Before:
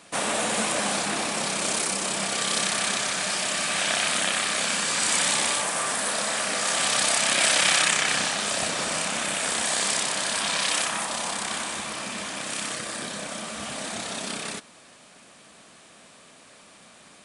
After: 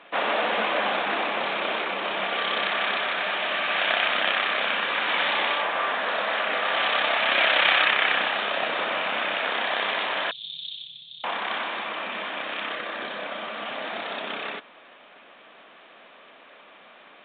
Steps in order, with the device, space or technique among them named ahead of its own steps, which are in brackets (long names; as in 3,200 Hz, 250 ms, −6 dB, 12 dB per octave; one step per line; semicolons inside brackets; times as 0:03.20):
0:10.31–0:11.24: Chebyshev band-stop filter 150–3,500 Hz, order 5
telephone (band-pass filter 390–3,600 Hz; level +4 dB; mu-law 64 kbit/s 8,000 Hz)